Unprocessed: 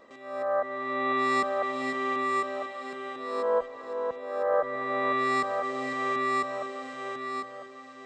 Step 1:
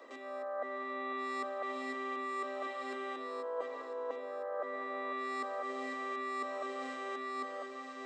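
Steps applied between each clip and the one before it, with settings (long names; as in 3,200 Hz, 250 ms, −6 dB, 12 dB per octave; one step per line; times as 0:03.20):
Butterworth high-pass 240 Hz 96 dB per octave
reversed playback
downward compressor 6 to 1, threshold −38 dBFS, peak gain reduction 15.5 dB
reversed playback
level +1 dB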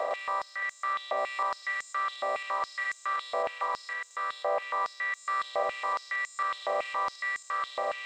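compressor on every frequency bin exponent 0.2
high-pass on a step sequencer 7.2 Hz 690–6,800 Hz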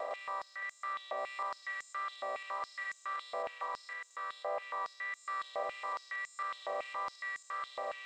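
pitch vibrato 1.6 Hz 12 cents
level −8 dB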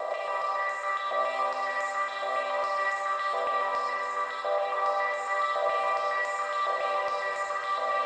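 convolution reverb RT60 4.6 s, pre-delay 5 ms, DRR −3 dB
level +5.5 dB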